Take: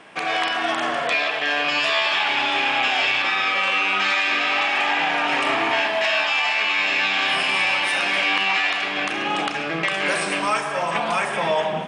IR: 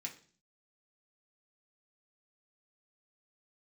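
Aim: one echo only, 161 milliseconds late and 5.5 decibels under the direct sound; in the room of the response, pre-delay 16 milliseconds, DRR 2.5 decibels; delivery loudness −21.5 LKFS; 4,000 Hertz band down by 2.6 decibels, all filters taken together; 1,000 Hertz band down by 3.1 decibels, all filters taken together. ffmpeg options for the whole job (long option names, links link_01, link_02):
-filter_complex "[0:a]equalizer=frequency=1000:width_type=o:gain=-4,equalizer=frequency=4000:width_type=o:gain=-3.5,aecho=1:1:161:0.531,asplit=2[link_01][link_02];[1:a]atrim=start_sample=2205,adelay=16[link_03];[link_02][link_03]afir=irnorm=-1:irlink=0,volume=-0.5dB[link_04];[link_01][link_04]amix=inputs=2:normalize=0,volume=-3dB"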